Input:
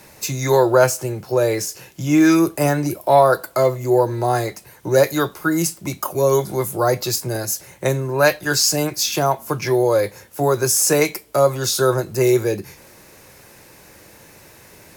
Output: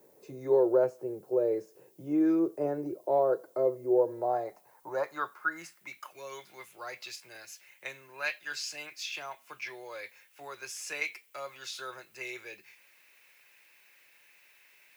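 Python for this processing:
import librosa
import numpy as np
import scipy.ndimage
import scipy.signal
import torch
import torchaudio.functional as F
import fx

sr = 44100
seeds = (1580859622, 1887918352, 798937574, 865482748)

y = fx.filter_sweep_bandpass(x, sr, from_hz=430.0, to_hz=2500.0, start_s=3.88, end_s=6.15, q=2.6)
y = fx.dmg_noise_colour(y, sr, seeds[0], colour='violet', level_db=-60.0)
y = y * librosa.db_to_amplitude(-6.5)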